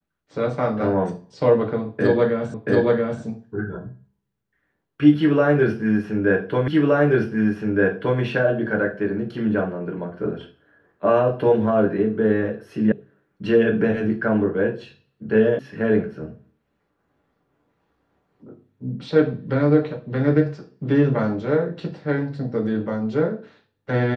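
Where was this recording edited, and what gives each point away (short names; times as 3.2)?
2.54 repeat of the last 0.68 s
6.68 repeat of the last 1.52 s
12.92 sound cut off
15.59 sound cut off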